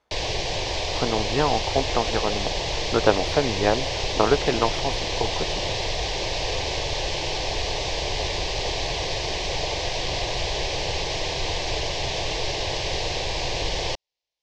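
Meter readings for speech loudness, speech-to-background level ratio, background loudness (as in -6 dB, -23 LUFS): -25.5 LUFS, 1.0 dB, -26.5 LUFS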